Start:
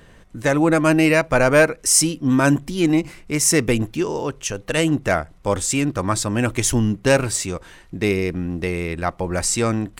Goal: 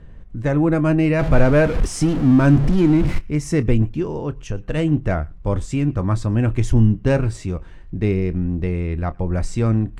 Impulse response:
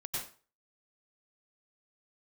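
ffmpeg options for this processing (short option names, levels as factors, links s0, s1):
-filter_complex "[0:a]asettb=1/sr,asplit=3[s0][s1][s2];[s0]atrim=end=1.194[s3];[s1]atrim=start=1.19:end=3.19,asetpts=PTS-STARTPTS,afade=t=in:d=0.004:c=qsin,afade=t=out:st=1.996:d=0.004:c=qsin,aeval=exprs='val(0)+0.5*0.126*sgn(val(0))':c=same[s4];[s2]atrim=start=3.186[s5];[s3][s4]acrossfade=d=0.004:c1=hsin:c2=qsin[s6];[s6][s5]acrossfade=d=0.004:c1=qsin:c2=hsin,aemphasis=mode=reproduction:type=riaa,asplit=2[s7][s8];[1:a]atrim=start_sample=2205,atrim=end_sample=3969,adelay=27[s9];[s8][s9]afir=irnorm=-1:irlink=0,volume=0.316[s10];[s7][s10]amix=inputs=2:normalize=0,volume=0.501"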